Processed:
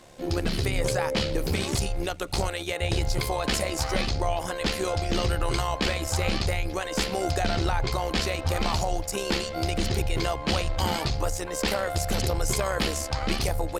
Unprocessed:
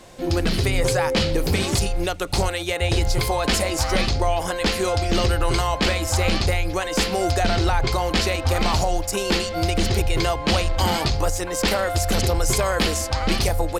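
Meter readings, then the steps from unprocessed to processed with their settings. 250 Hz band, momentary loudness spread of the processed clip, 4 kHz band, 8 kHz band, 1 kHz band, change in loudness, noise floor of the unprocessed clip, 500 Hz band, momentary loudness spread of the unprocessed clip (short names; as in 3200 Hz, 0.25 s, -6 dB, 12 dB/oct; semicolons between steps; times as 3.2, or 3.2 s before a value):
-5.5 dB, 3 LU, -5.5 dB, -5.5 dB, -5.5 dB, -5.5 dB, -29 dBFS, -5.5 dB, 3 LU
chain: AM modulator 71 Hz, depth 40%; gain -3 dB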